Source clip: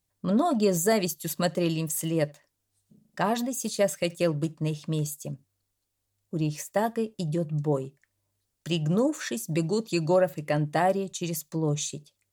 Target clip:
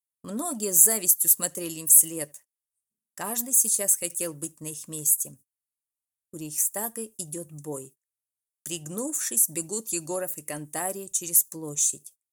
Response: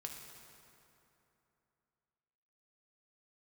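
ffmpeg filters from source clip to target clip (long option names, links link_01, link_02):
-af "aexciter=amount=3.7:drive=9.6:freq=6100,equalizer=frequency=160:width_type=o:width=0.67:gain=-9,equalizer=frequency=630:width_type=o:width=0.67:gain=-5,equalizer=frequency=10000:width_type=o:width=0.67:gain=8,agate=range=-27dB:threshold=-42dB:ratio=16:detection=peak,volume=-6dB"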